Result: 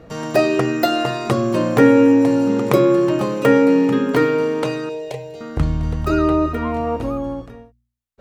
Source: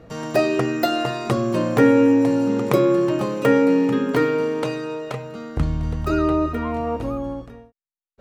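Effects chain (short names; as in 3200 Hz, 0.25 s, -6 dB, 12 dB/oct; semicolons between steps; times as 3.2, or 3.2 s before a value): 4.89–5.41 fixed phaser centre 530 Hz, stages 4; de-hum 59.8 Hz, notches 4; gain +3 dB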